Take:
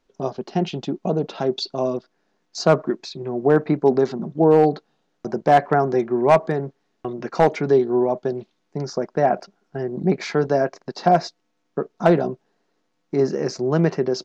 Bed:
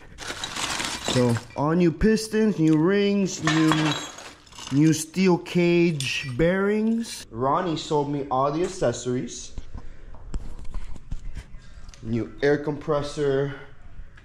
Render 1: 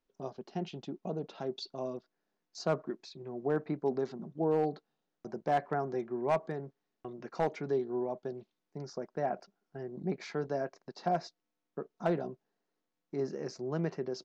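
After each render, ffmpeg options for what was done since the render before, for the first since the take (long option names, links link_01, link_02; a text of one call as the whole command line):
ffmpeg -i in.wav -af "volume=-15dB" out.wav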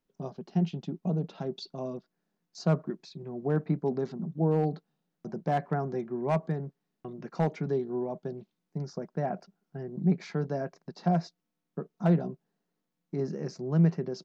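ffmpeg -i in.wav -af "equalizer=frequency=170:width=1.9:gain=14" out.wav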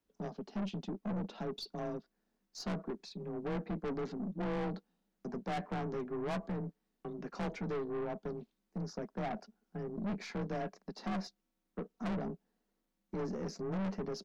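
ffmpeg -i in.wav -af "afreqshift=26,aeval=exprs='(tanh(50.1*val(0)+0.25)-tanh(0.25))/50.1':channel_layout=same" out.wav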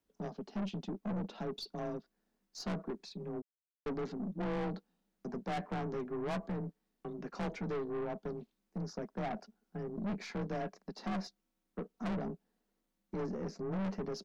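ffmpeg -i in.wav -filter_complex "[0:a]asettb=1/sr,asplit=3[link_01][link_02][link_03];[link_01]atrim=end=13.264[link_04];[link_02]atrim=start=13.26:end=13.78,asetpts=PTS-STARTPTS,afade=type=in:duration=0.004:curve=qsin,afade=type=out:start_time=0.516:duration=0.004:curve=qsin,highshelf=frequency=3900:gain=-8.5[link_05];[link_03]atrim=start=13.776[link_06];[link_04][link_05]acrossfade=duration=0.004:curve1=hsin:curve2=qsin[link_07];[link_07][link_06]acrossfade=duration=0.004:curve1=qsin:curve2=hsin,asplit=3[link_08][link_09][link_10];[link_08]atrim=end=3.42,asetpts=PTS-STARTPTS,afade=type=out:start_time=3.416:duration=0.004:curve=hsin[link_11];[link_09]atrim=start=3.42:end=3.86,asetpts=PTS-STARTPTS,volume=0[link_12];[link_10]atrim=start=3.86,asetpts=PTS-STARTPTS,afade=type=in:duration=0.004:curve=hsin[link_13];[link_11][link_12][link_13]concat=n=3:v=0:a=1" out.wav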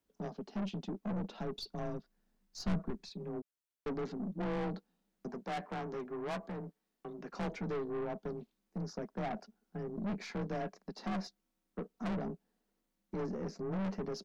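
ffmpeg -i in.wav -filter_complex "[0:a]asettb=1/sr,asplit=3[link_01][link_02][link_03];[link_01]atrim=end=1.064[link_04];[link_02]atrim=start=1.06:end=3.1,asetpts=PTS-STARTPTS,afade=type=in:duration=0.004:curve=qsin,afade=type=out:start_time=2.036:duration=0.004:curve=qsin,asubboost=boost=7.5:cutoff=160[link_05];[link_03]atrim=start=3.096[link_06];[link_04][link_05]acrossfade=duration=0.004:curve1=hsin:curve2=qsin[link_07];[link_07][link_06]acrossfade=duration=0.004:curve1=qsin:curve2=hsin,asettb=1/sr,asplit=3[link_08][link_09][link_10];[link_08]atrim=end=5.284[link_11];[link_09]atrim=start=5.28:end=7.28,asetpts=PTS-STARTPTS,afade=type=in:duration=0.004:curve=qsin,afade=type=out:start_time=1.996:duration=0.004:curve=qsin,lowshelf=frequency=220:gain=-8.5[link_12];[link_10]atrim=start=7.276[link_13];[link_11][link_12]acrossfade=duration=0.004:curve1=hsin:curve2=qsin[link_14];[link_14][link_13]acrossfade=duration=0.004:curve1=qsin:curve2=hsin" out.wav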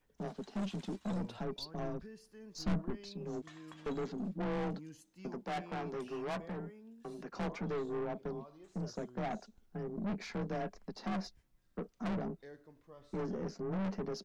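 ffmpeg -i in.wav -i bed.wav -filter_complex "[1:a]volume=-32dB[link_01];[0:a][link_01]amix=inputs=2:normalize=0" out.wav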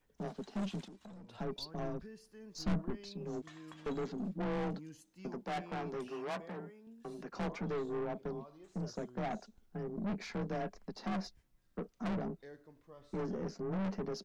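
ffmpeg -i in.wav -filter_complex "[0:a]asettb=1/sr,asplit=3[link_01][link_02][link_03];[link_01]atrim=end=0.844[link_04];[link_02]atrim=start=0.84:end=1.39,asetpts=PTS-STARTPTS,afade=type=in:duration=0.004:curve=qsin,afade=type=out:start_time=0.546:duration=0.004:curve=qsin,acompressor=threshold=-49dB:ratio=16:attack=3.2:release=140:knee=1:detection=peak[link_05];[link_03]atrim=start=1.386[link_06];[link_04][link_05]acrossfade=duration=0.004:curve1=hsin:curve2=qsin[link_07];[link_07][link_06]acrossfade=duration=0.004:curve1=qsin:curve2=hsin,asettb=1/sr,asplit=3[link_08][link_09][link_10];[link_08]atrim=end=6.104[link_11];[link_09]atrim=start=6.1:end=6.87,asetpts=PTS-STARTPTS,afade=type=in:duration=0.004:curve=qsin,afade=type=out:start_time=0.766:duration=0.004:curve=qsin,highpass=frequency=250:poles=1[link_12];[link_10]atrim=start=6.866[link_13];[link_11][link_12]acrossfade=duration=0.004:curve1=hsin:curve2=qsin[link_14];[link_14][link_13]acrossfade=duration=0.004:curve1=qsin:curve2=hsin" out.wav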